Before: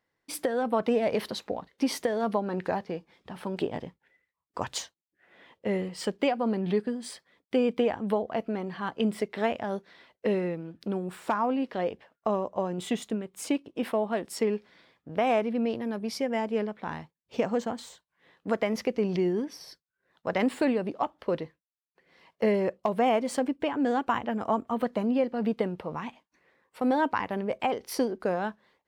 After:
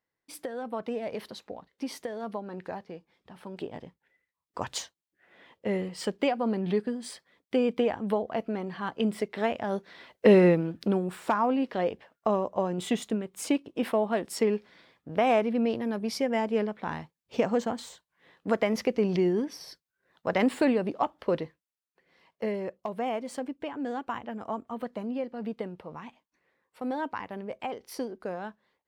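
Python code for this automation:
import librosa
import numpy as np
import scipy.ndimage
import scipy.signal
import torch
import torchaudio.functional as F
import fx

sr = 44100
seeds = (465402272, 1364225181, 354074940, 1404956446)

y = fx.gain(x, sr, db=fx.line((3.48, -8.0), (4.74, -0.5), (9.54, -0.5), (10.49, 11.5), (11.15, 1.5), (21.4, 1.5), (22.56, -7.0)))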